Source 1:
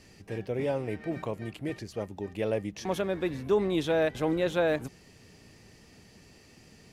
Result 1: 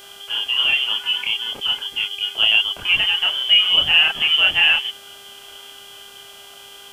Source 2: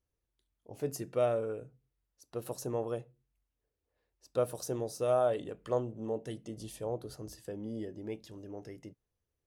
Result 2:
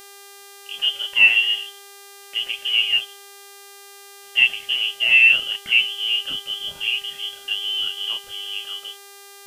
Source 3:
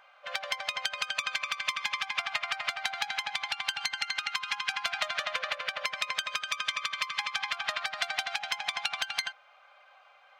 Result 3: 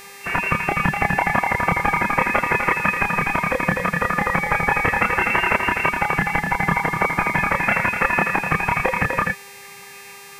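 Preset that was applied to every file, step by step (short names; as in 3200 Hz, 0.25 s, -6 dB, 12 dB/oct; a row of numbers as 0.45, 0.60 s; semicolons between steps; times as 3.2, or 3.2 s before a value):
chorus voices 6, 0.75 Hz, delay 29 ms, depth 2 ms; inverted band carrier 3300 Hz; buzz 400 Hz, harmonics 37, -60 dBFS -2 dB/oct; normalise peaks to -3 dBFS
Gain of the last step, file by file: +14.5, +16.0, +17.0 dB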